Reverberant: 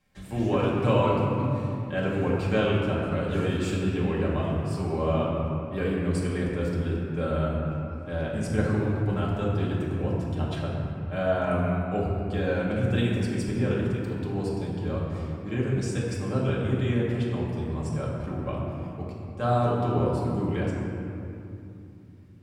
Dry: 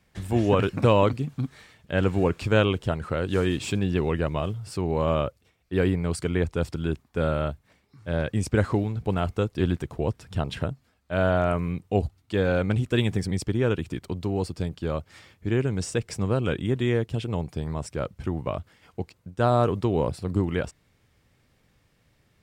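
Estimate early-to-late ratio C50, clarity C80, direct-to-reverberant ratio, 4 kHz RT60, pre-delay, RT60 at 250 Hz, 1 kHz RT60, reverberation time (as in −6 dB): −0.5 dB, 1.0 dB, −6.0 dB, 1.5 s, 4 ms, 4.3 s, 2.7 s, 2.8 s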